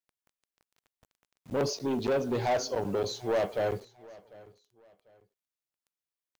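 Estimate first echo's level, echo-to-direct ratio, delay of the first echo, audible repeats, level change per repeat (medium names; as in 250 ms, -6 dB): -22.0 dB, -21.5 dB, 746 ms, 2, -10.5 dB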